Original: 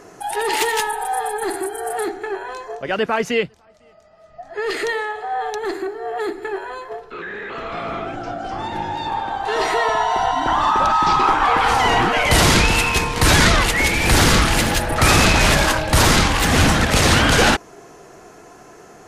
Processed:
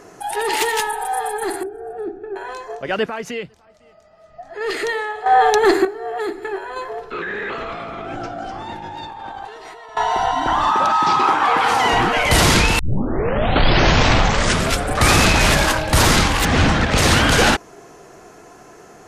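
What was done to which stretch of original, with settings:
1.63–2.36 running mean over 43 samples
3.08–4.61 compressor 2:1, threshold -29 dBFS
5.26–5.85 gain +11 dB
6.76–9.97 negative-ratio compressor -31 dBFS
10.72–11.93 HPF 150 Hz
12.79 tape start 2.36 s
16.45–16.98 air absorption 99 m

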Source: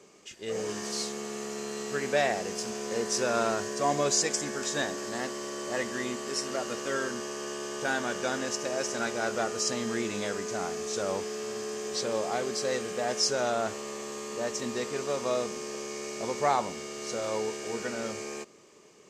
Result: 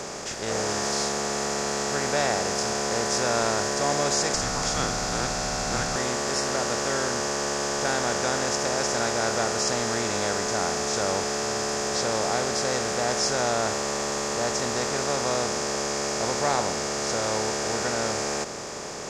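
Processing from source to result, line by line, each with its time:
4.34–5.96 frequency shift -400 Hz
whole clip: per-bin compression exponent 0.4; gain -3 dB

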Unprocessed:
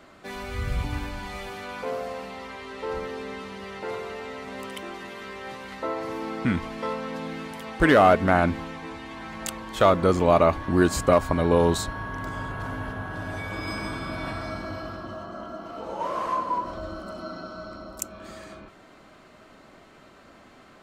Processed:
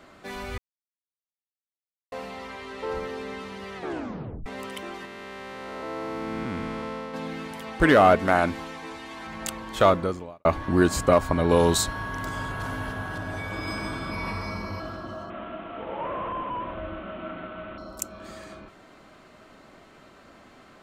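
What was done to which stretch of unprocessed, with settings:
0.58–2.12 mute
3.76 tape stop 0.70 s
5.05–7.14 time blur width 0.435 s
8.19–9.27 tone controls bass -7 dB, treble +5 dB
9.89–10.45 fade out quadratic
11.49–13.18 high shelf 2800 Hz +8.5 dB
14.11–14.8 ripple EQ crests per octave 0.85, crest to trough 10 dB
15.3–17.78 delta modulation 16 kbps, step -38.5 dBFS

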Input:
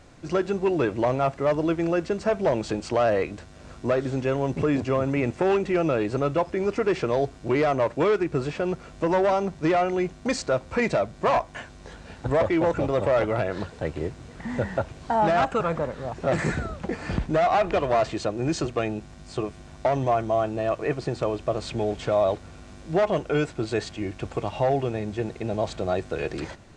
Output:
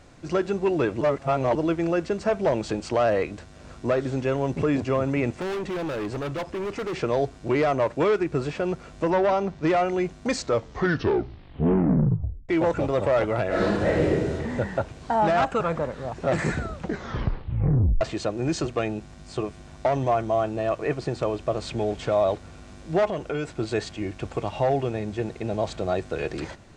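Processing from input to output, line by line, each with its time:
1.01–1.55 reverse
5.38–6.94 hard clip -27 dBFS
9.1–9.67 LPF 5300 Hz
10.35 tape stop 2.14 s
13.47–14.34 reverb throw, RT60 1.3 s, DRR -9 dB
16.8 tape stop 1.21 s
23.07–23.55 compressor 3:1, threshold -25 dBFS

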